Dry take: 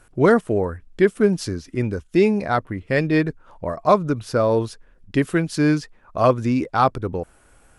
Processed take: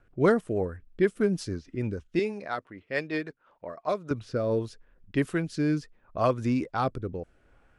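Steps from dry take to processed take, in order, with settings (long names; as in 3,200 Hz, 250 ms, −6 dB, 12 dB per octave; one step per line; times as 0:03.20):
0:02.19–0:04.11: high-pass filter 630 Hz 6 dB per octave
low-pass that shuts in the quiet parts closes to 2,600 Hz, open at −16 dBFS
rotating-speaker cabinet horn 6.3 Hz, later 0.75 Hz, at 0:03.45
level −5.5 dB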